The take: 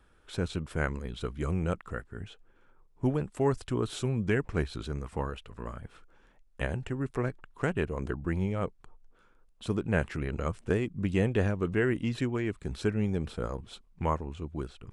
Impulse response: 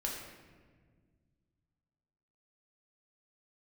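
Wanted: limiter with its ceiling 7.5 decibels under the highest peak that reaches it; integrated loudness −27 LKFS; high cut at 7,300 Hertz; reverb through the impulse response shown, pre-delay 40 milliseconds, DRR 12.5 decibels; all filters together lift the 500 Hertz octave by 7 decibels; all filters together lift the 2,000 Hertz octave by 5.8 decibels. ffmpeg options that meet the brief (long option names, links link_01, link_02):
-filter_complex "[0:a]lowpass=7300,equalizer=frequency=500:width_type=o:gain=8.5,equalizer=frequency=2000:width_type=o:gain=7,alimiter=limit=-16dB:level=0:latency=1,asplit=2[link_01][link_02];[1:a]atrim=start_sample=2205,adelay=40[link_03];[link_02][link_03]afir=irnorm=-1:irlink=0,volume=-15dB[link_04];[link_01][link_04]amix=inputs=2:normalize=0,volume=2.5dB"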